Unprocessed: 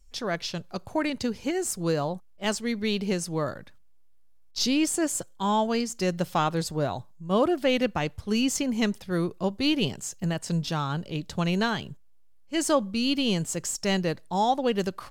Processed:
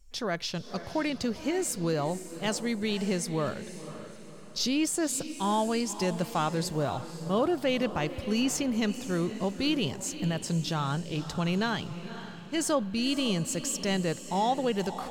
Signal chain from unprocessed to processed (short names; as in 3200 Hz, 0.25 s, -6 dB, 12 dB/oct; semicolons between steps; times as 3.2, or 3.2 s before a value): in parallel at +2 dB: limiter -23.5 dBFS, peak gain reduction 11.5 dB; on the sum: diffused feedback echo 0.525 s, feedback 44%, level -12 dB; gain -7 dB